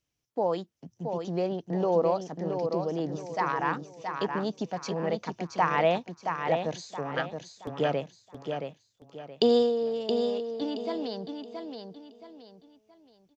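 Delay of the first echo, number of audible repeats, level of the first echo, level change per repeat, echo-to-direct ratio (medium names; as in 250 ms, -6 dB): 673 ms, 4, -6.0 dB, -9.5 dB, -5.5 dB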